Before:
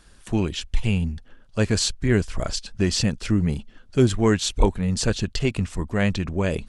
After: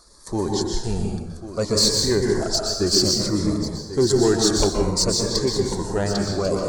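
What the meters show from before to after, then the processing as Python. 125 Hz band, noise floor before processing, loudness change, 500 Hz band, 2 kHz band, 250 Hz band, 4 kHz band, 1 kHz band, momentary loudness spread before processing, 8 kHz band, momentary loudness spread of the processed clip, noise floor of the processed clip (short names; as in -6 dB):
-3.0 dB, -51 dBFS, +3.0 dB, +5.0 dB, -4.0 dB, +0.5 dB, +7.5 dB, +3.0 dB, 8 LU, +7.5 dB, 10 LU, -36 dBFS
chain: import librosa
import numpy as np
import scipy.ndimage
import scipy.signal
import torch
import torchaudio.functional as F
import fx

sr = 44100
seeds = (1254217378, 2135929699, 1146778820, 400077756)

p1 = fx.spec_quant(x, sr, step_db=15)
p2 = fx.curve_eq(p1, sr, hz=(240.0, 340.0, 1100.0, 2000.0, 2800.0, 4300.0, 11000.0), db=(0, 9, 13, 1, -14, 15, 9))
p3 = 10.0 ** (-5.0 / 20.0) * np.tanh(p2 / 10.0 ** (-5.0 / 20.0))
p4 = p3 + fx.echo_single(p3, sr, ms=1093, db=-12.5, dry=0)
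p5 = fx.rev_plate(p4, sr, seeds[0], rt60_s=1.1, hf_ratio=0.6, predelay_ms=110, drr_db=0.5)
p6 = fx.notch_cascade(p5, sr, direction='falling', hz=0.59)
y = p6 * librosa.db_to_amplitude(-5.0)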